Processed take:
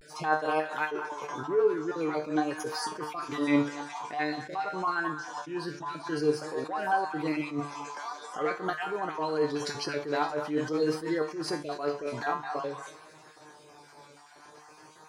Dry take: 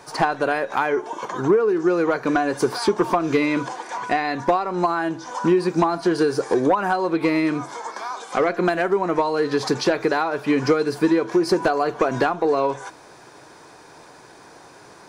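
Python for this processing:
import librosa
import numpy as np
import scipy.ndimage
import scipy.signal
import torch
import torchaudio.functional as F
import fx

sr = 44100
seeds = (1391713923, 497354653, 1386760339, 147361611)

y = fx.spec_dropout(x, sr, seeds[0], share_pct=28)
y = scipy.signal.sosfilt(scipy.signal.butter(2, 41.0, 'highpass', fs=sr, output='sos'), y)
y = fx.low_shelf(y, sr, hz=280.0, db=-4.5)
y = fx.comb_fb(y, sr, f0_hz=150.0, decay_s=0.3, harmonics='all', damping=0.0, mix_pct=90)
y = y + 10.0 ** (-20.0 / 20.0) * np.pad(y, (int(241 * sr / 1000.0), 0))[:len(y)]
y = fx.vibrato(y, sr, rate_hz=0.48, depth_cents=64.0)
y = fx.echo_stepped(y, sr, ms=208, hz=1200.0, octaves=1.4, feedback_pct=70, wet_db=-8.5)
y = fx.attack_slew(y, sr, db_per_s=130.0)
y = y * 10.0 ** (4.5 / 20.0)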